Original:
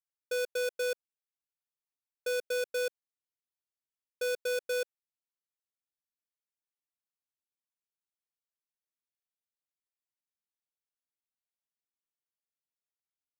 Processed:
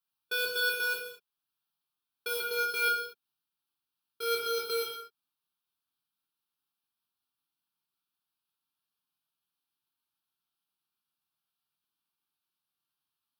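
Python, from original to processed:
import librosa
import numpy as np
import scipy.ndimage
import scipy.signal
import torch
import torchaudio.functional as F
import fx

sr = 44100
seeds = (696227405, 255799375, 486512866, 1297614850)

y = fx.pitch_glide(x, sr, semitones=-3.5, runs='starting unshifted')
y = scipy.signal.sosfilt(scipy.signal.butter(2, 120.0, 'highpass', fs=sr, output='sos'), y)
y = fx.fixed_phaser(y, sr, hz=2000.0, stages=6)
y = fx.rev_gated(y, sr, seeds[0], gate_ms=270, shape='falling', drr_db=-3.0)
y = F.gain(torch.from_numpy(y), 7.0).numpy()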